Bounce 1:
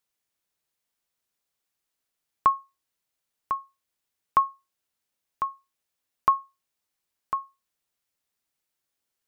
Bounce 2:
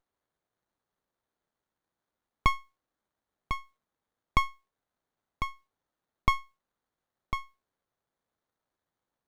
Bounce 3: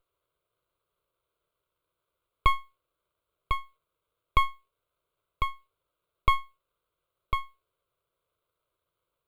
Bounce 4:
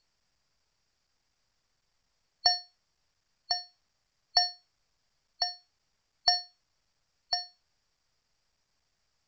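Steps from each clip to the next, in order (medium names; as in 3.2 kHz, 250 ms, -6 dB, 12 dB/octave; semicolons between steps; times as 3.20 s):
peaking EQ 130 Hz -14.5 dB 2.4 oct; sliding maximum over 17 samples
static phaser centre 1.2 kHz, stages 8; in parallel at +1 dB: peak limiter -22.5 dBFS, peak gain reduction 11 dB
four frequency bands reordered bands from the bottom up 2341; tilt EQ -2 dB/octave; µ-law 128 kbps 16 kHz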